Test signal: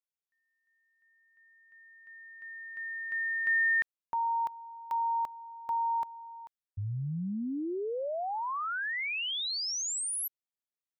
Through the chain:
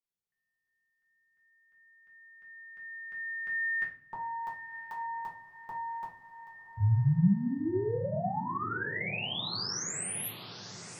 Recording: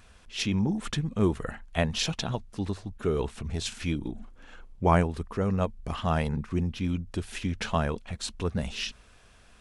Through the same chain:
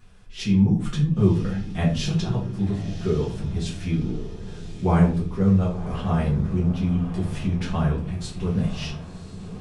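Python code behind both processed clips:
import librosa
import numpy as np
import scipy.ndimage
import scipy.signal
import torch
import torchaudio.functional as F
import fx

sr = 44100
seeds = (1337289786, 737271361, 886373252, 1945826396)

p1 = fx.peak_eq(x, sr, hz=150.0, db=10.5, octaves=1.6)
p2 = p1 + fx.echo_diffused(p1, sr, ms=1046, feedback_pct=51, wet_db=-12.0, dry=0)
p3 = fx.room_shoebox(p2, sr, seeds[0], volume_m3=33.0, walls='mixed', distance_m=0.91)
y = p3 * 10.0 ** (-8.0 / 20.0)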